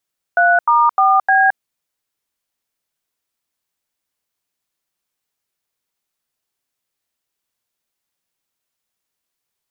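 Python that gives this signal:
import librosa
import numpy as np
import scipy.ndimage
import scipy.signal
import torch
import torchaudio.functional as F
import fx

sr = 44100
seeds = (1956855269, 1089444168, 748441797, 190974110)

y = fx.dtmf(sr, digits='3*4B', tone_ms=219, gap_ms=86, level_db=-12.0)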